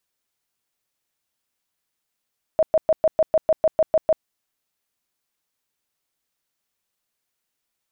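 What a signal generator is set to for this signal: tone bursts 634 Hz, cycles 24, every 0.15 s, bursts 11, -12.5 dBFS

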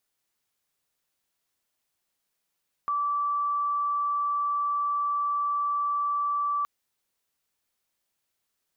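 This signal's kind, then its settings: tone sine 1.16 kHz -24 dBFS 3.77 s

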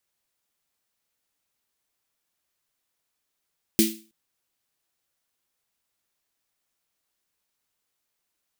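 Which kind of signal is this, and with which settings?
snare drum length 0.32 s, tones 220 Hz, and 330 Hz, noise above 2.3 kHz, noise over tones -2.5 dB, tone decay 0.35 s, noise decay 0.35 s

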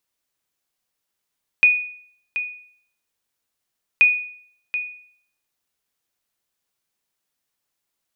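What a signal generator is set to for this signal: sonar ping 2.47 kHz, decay 0.59 s, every 2.38 s, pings 2, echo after 0.73 s, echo -11.5 dB -7 dBFS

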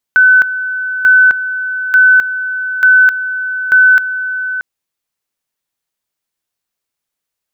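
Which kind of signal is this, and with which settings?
two-level tone 1.51 kHz -3.5 dBFS, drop 12 dB, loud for 0.26 s, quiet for 0.63 s, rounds 5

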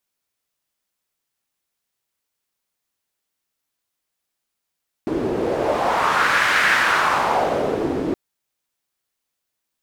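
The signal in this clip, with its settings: wind-like swept noise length 3.07 s, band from 330 Hz, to 1.7 kHz, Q 2.6, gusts 1, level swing 5.5 dB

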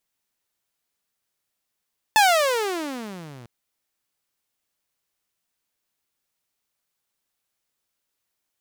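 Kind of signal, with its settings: gliding synth tone saw, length 1.30 s, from 886 Hz, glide -35.5 st, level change -29 dB, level -9.5 dB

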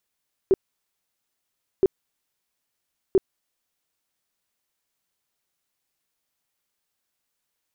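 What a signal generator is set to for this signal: tone bursts 383 Hz, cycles 11, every 1.32 s, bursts 3, -12.5 dBFS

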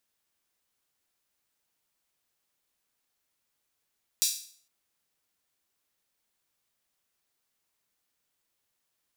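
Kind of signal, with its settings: open hi-hat length 0.46 s, high-pass 4.7 kHz, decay 0.50 s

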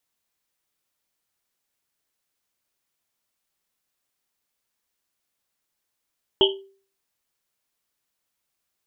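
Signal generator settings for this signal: Risset drum, pitch 390 Hz, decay 0.44 s, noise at 3.1 kHz, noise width 370 Hz, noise 45%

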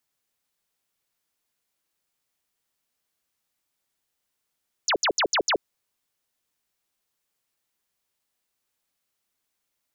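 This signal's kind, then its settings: burst of laser zaps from 7.6 kHz, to 310 Hz, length 0.08 s sine, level -19 dB, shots 5, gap 0.07 s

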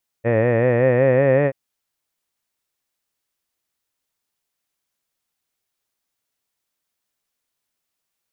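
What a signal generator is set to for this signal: formant-synthesis vowel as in head, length 1.28 s, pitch 112 Hz, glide +4 st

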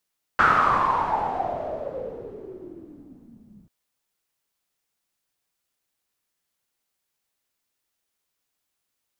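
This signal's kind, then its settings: swept filtered noise white, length 3.29 s lowpass, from 1.4 kHz, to 190 Hz, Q 8.5, exponential, gain ramp -27.5 dB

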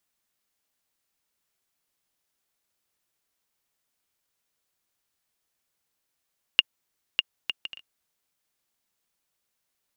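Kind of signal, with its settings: bouncing ball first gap 0.60 s, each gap 0.51, 2.83 kHz, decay 29 ms -2.5 dBFS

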